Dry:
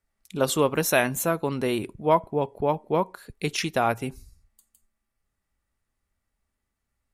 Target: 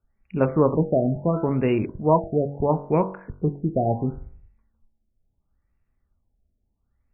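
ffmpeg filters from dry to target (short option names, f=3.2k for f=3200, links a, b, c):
-af "lowshelf=f=320:g=10.5,bandreject=f=47.31:t=h:w=4,bandreject=f=94.62:t=h:w=4,bandreject=f=141.93:t=h:w=4,bandreject=f=189.24:t=h:w=4,bandreject=f=236.55:t=h:w=4,bandreject=f=283.86:t=h:w=4,bandreject=f=331.17:t=h:w=4,bandreject=f=378.48:t=h:w=4,bandreject=f=425.79:t=h:w=4,bandreject=f=473.1:t=h:w=4,bandreject=f=520.41:t=h:w=4,bandreject=f=567.72:t=h:w=4,bandreject=f=615.03:t=h:w=4,bandreject=f=662.34:t=h:w=4,bandreject=f=709.65:t=h:w=4,bandreject=f=756.96:t=h:w=4,bandreject=f=804.27:t=h:w=4,bandreject=f=851.58:t=h:w=4,bandreject=f=898.89:t=h:w=4,bandreject=f=946.2:t=h:w=4,bandreject=f=993.51:t=h:w=4,bandreject=f=1.04082k:t=h:w=4,bandreject=f=1.08813k:t=h:w=4,bandreject=f=1.13544k:t=h:w=4,bandreject=f=1.18275k:t=h:w=4,bandreject=f=1.23006k:t=h:w=4,bandreject=f=1.27737k:t=h:w=4,bandreject=f=1.32468k:t=h:w=4,bandreject=f=1.37199k:t=h:w=4,bandreject=f=1.4193k:t=h:w=4,bandreject=f=1.46661k:t=h:w=4,bandreject=f=1.51392k:t=h:w=4,bandreject=f=1.56123k:t=h:w=4,afftfilt=real='re*lt(b*sr/1024,730*pow(2900/730,0.5+0.5*sin(2*PI*0.73*pts/sr)))':imag='im*lt(b*sr/1024,730*pow(2900/730,0.5+0.5*sin(2*PI*0.73*pts/sr)))':win_size=1024:overlap=0.75"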